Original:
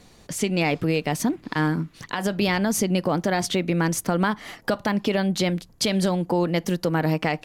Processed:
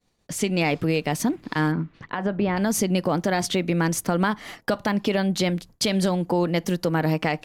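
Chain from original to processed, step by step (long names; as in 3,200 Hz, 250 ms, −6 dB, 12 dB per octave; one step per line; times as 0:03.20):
downward expander −39 dBFS
0:01.71–0:02.56: low-pass filter 2,900 Hz → 1,400 Hz 12 dB per octave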